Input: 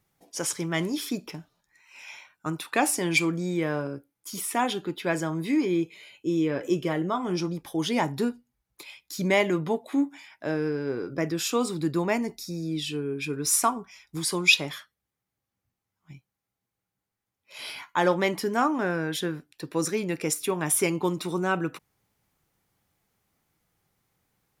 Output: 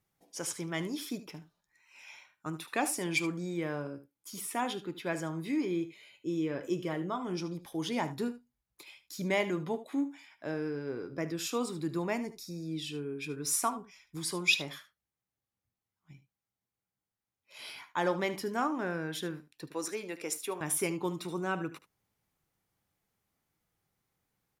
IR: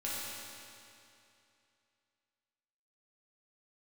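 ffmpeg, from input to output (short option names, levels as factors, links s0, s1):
-filter_complex "[0:a]asettb=1/sr,asplit=3[s0][s1][s2];[s0]atrim=end=19.724[s3];[s1]atrim=start=19.72:end=20.61,asetpts=PTS-STARTPTS,afade=t=in:d=0.004:c=qsin,afade=t=out:st=0.886:d=0.004:c=qsin,highpass=350[s4];[s2]atrim=start=20.606[s5];[s3][s4]acrossfade=d=0.004:c1=hsin:c2=qsin[s6];[s6][s5]acrossfade=d=0.004:c1=qsin:c2=hsin,asplit=2[s7][s8];[s8]aecho=0:1:75:0.188[s9];[s7][s9]amix=inputs=2:normalize=0,volume=0.422"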